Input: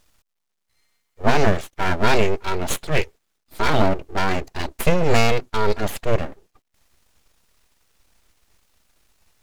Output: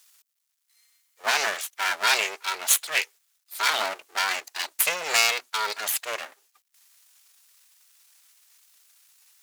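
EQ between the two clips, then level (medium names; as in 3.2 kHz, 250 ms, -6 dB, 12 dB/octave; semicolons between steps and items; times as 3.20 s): high-pass 1.2 kHz 12 dB/octave; treble shelf 4.7 kHz +11.5 dB; 0.0 dB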